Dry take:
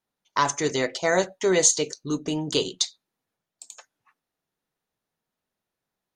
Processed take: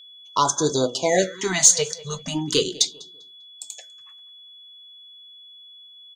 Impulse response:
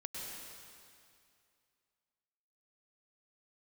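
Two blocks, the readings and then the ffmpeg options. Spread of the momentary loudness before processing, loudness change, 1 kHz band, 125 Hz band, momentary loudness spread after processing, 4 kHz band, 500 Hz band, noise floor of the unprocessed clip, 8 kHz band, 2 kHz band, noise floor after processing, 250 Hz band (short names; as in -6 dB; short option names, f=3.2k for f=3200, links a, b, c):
9 LU, +3.5 dB, +2.5 dB, +3.5 dB, 22 LU, +4.5 dB, +1.0 dB, under -85 dBFS, +5.5 dB, -1.0 dB, -47 dBFS, +0.5 dB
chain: -filter_complex "[0:a]highshelf=f=7.3k:g=7.5,asplit=2[a][b];[b]asoftclip=type=tanh:threshold=-12dB,volume=-7dB[c];[a][c]amix=inputs=2:normalize=0,asplit=2[d][e];[e]adelay=198,lowpass=f=3.3k:p=1,volume=-19dB,asplit=2[f][g];[g]adelay=198,lowpass=f=3.3k:p=1,volume=0.34,asplit=2[h][i];[i]adelay=198,lowpass=f=3.3k:p=1,volume=0.34[j];[d][f][h][j]amix=inputs=4:normalize=0,flanger=delay=1.8:depth=9:regen=80:speed=0.39:shape=triangular,aeval=exprs='val(0)+0.00398*sin(2*PI*3400*n/s)':c=same,afftfilt=real='re*(1-between(b*sr/1024,280*pow(2400/280,0.5+0.5*sin(2*PI*0.38*pts/sr))/1.41,280*pow(2400/280,0.5+0.5*sin(2*PI*0.38*pts/sr))*1.41))':imag='im*(1-between(b*sr/1024,280*pow(2400/280,0.5+0.5*sin(2*PI*0.38*pts/sr))/1.41,280*pow(2400/280,0.5+0.5*sin(2*PI*0.38*pts/sr))*1.41))':win_size=1024:overlap=0.75,volume=4.5dB"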